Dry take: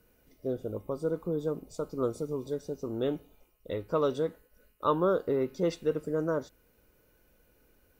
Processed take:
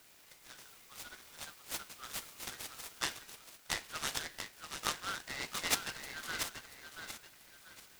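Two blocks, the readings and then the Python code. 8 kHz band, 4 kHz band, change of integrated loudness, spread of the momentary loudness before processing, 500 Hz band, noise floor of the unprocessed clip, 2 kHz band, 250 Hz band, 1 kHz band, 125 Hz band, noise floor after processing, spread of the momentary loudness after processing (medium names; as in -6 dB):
no reading, +11.0 dB, -7.5 dB, 9 LU, -23.5 dB, -67 dBFS, +8.0 dB, -20.5 dB, -7.0 dB, -17.5 dB, -61 dBFS, 17 LU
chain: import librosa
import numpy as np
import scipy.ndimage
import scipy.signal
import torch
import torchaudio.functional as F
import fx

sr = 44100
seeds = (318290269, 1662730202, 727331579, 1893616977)

p1 = scipy.signal.sosfilt(scipy.signal.butter(8, 1700.0, 'highpass', fs=sr, output='sos'), x)
p2 = fx.quant_dither(p1, sr, seeds[0], bits=6, dither='none')
p3 = p1 + F.gain(torch.from_numpy(p2), -7.5).numpy()
p4 = fx.echo_feedback(p3, sr, ms=685, feedback_pct=32, wet_db=-7.0)
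p5 = fx.noise_mod_delay(p4, sr, seeds[1], noise_hz=2000.0, depth_ms=0.066)
y = F.gain(torch.from_numpy(p5), 12.5).numpy()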